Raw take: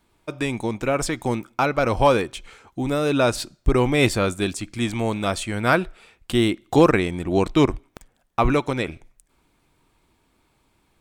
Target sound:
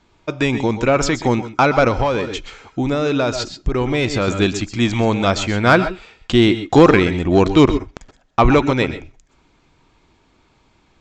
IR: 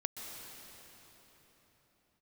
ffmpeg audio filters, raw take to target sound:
-filter_complex "[0:a]aresample=16000,aresample=44100,acontrast=63[link_01];[1:a]atrim=start_sample=2205,atrim=end_sample=6174[link_02];[link_01][link_02]afir=irnorm=-1:irlink=0,asettb=1/sr,asplit=3[link_03][link_04][link_05];[link_03]atrim=end=1.884[link_06];[link_04]atrim=start=1.88:end=4.28,asetpts=PTS-STARTPTS,afade=type=in:duration=0.004:curve=qsin,afade=type=out:start_time=2.396:duration=0.004:curve=qsin,acompressor=threshold=-18dB:ratio=6[link_07];[link_05]atrim=start=4.276[link_08];[link_06][link_07]acrossfade=duration=0.004:curve1=hsin:curve2=qsin[link_09];[link_09][link_08]acrossfade=duration=0.004:curve1=qsin:curve2=hsin,volume=2.5dB"

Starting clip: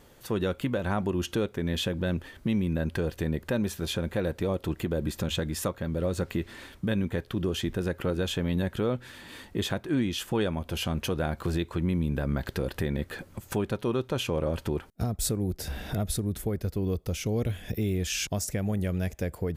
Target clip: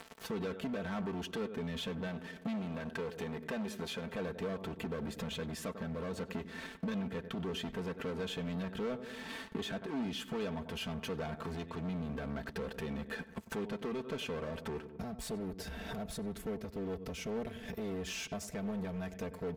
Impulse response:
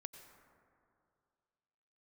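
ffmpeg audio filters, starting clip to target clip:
-filter_complex "[0:a]aeval=exprs='sgn(val(0))*max(abs(val(0))-0.00335,0)':channel_layout=same,acompressor=mode=upward:threshold=-42dB:ratio=2.5,asplit=2[link_01][link_02];[link_02]adelay=96,lowpass=frequency=2300:poles=1,volume=-18dB,asplit=2[link_03][link_04];[link_04]adelay=96,lowpass=frequency=2300:poles=1,volume=0.45,asplit=2[link_05][link_06];[link_06]adelay=96,lowpass=frequency=2300:poles=1,volume=0.45,asplit=2[link_07][link_08];[link_08]adelay=96,lowpass=frequency=2300:poles=1,volume=0.45[link_09];[link_01][link_03][link_05][link_07][link_09]amix=inputs=5:normalize=0,volume=31dB,asoftclip=hard,volume=-31dB,asettb=1/sr,asplit=3[link_10][link_11][link_12];[link_10]atrim=end=2.074[link_13];[link_11]atrim=start=2.07:end=4.14,asetpts=PTS-STARTPTS,afade=type=in:duration=0.004:curve=qsin,afade=type=out:start_time=2.066:duration=0.004:curve=qsin,lowshelf=frequency=130:gain=-10[link_14];[link_12]atrim=start=4.136[link_15];[link_13][link_14]acrossfade=duration=0.004:curve1=hsin:curve2=qsin[link_16];[link_16][link_15]acrossfade=duration=0.004:curve1=qsin:curve2=hsin,acompressor=threshold=-45dB:ratio=5,lowpass=frequency=3200:poles=1,lowshelf=frequency=62:gain=-12,aecho=1:1:4.5:0.72,volume=6.5dB"

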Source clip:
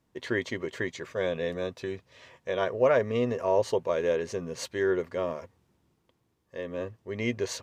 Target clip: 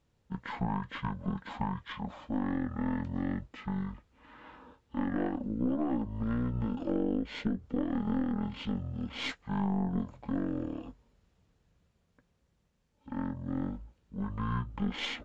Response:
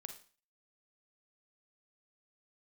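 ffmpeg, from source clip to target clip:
-af "asetrate=22050,aresample=44100,acompressor=threshold=-27dB:ratio=12,aeval=exprs='0.119*(cos(1*acos(clip(val(0)/0.119,-1,1)))-cos(1*PI/2))+0.015*(cos(4*acos(clip(val(0)/0.119,-1,1)))-cos(4*PI/2))':channel_layout=same"

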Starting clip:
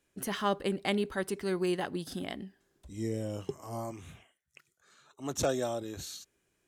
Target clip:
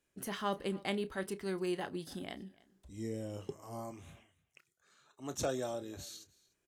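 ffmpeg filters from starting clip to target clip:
ffmpeg -i in.wav -filter_complex "[0:a]asplit=2[link_01][link_02];[link_02]adelay=31,volume=-13.5dB[link_03];[link_01][link_03]amix=inputs=2:normalize=0,asplit=2[link_04][link_05];[link_05]aecho=0:1:296:0.075[link_06];[link_04][link_06]amix=inputs=2:normalize=0,volume=-5.5dB" out.wav

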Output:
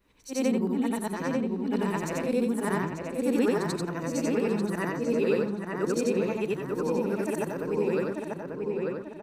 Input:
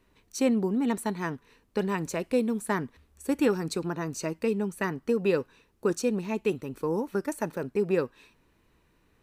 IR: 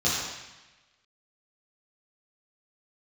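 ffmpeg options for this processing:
-filter_complex "[0:a]afftfilt=real='re':imag='-im':win_size=8192:overlap=0.75,asplit=2[link_01][link_02];[link_02]adelay=891,lowpass=frequency=2600:poles=1,volume=-3dB,asplit=2[link_03][link_04];[link_04]adelay=891,lowpass=frequency=2600:poles=1,volume=0.47,asplit=2[link_05][link_06];[link_06]adelay=891,lowpass=frequency=2600:poles=1,volume=0.47,asplit=2[link_07][link_08];[link_08]adelay=891,lowpass=frequency=2600:poles=1,volume=0.47,asplit=2[link_09][link_10];[link_10]adelay=891,lowpass=frequency=2600:poles=1,volume=0.47,asplit=2[link_11][link_12];[link_12]adelay=891,lowpass=frequency=2600:poles=1,volume=0.47[link_13];[link_01][link_03][link_05][link_07][link_09][link_11][link_13]amix=inputs=7:normalize=0,volume=3.5dB"

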